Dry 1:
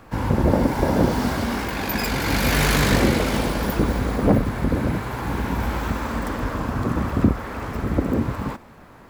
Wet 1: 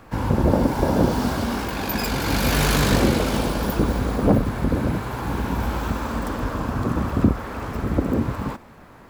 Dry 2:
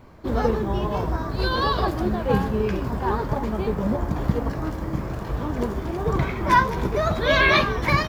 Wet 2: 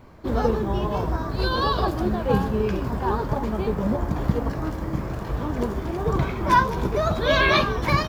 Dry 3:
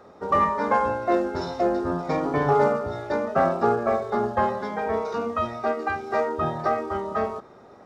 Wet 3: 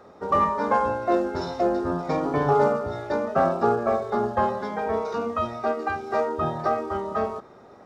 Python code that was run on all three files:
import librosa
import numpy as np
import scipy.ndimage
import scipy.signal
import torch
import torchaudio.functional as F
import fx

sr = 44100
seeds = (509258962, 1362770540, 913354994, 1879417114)

y = fx.dynamic_eq(x, sr, hz=2000.0, q=3.3, threshold_db=-43.0, ratio=4.0, max_db=-6)